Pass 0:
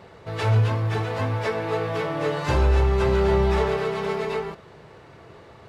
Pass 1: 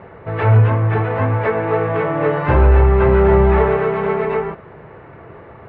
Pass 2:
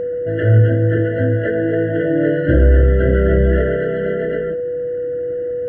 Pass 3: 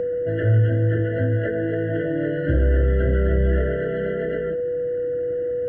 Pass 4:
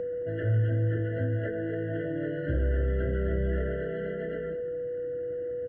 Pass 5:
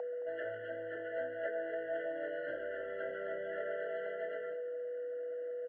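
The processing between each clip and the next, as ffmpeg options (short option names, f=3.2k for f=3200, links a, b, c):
-af "lowpass=f=2.2k:w=0.5412,lowpass=f=2.2k:w=1.3066,volume=8dB"
-af "superequalizer=6b=2.51:7b=0.501:14b=0.316:15b=0.447,aeval=exprs='val(0)+0.112*sin(2*PI*490*n/s)':c=same,afftfilt=real='re*eq(mod(floor(b*sr/1024/680),2),0)':imag='im*eq(mod(floor(b*sr/1024/680),2),0)':win_size=1024:overlap=0.75"
-filter_complex "[0:a]acrossover=split=110|2000[a][b][c];[a]acompressor=threshold=-17dB:ratio=4[d];[b]acompressor=threshold=-21dB:ratio=4[e];[c]acompressor=threshold=-42dB:ratio=4[f];[d][e][f]amix=inputs=3:normalize=0,volume=-1dB"
-af "aecho=1:1:219:0.2,volume=-8.5dB"
-af "highpass=f=740:t=q:w=4,volume=-4.5dB"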